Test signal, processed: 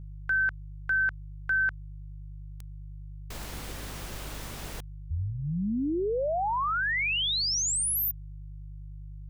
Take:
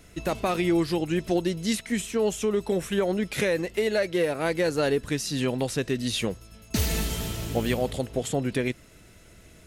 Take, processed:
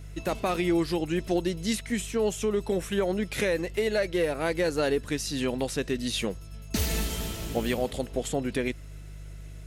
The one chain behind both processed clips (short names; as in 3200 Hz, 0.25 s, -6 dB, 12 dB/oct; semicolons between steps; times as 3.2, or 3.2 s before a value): buzz 50 Hz, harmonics 3, -40 dBFS -5 dB/oct; dynamic EQ 120 Hz, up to -7 dB, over -47 dBFS, Q 2.7; gain -1.5 dB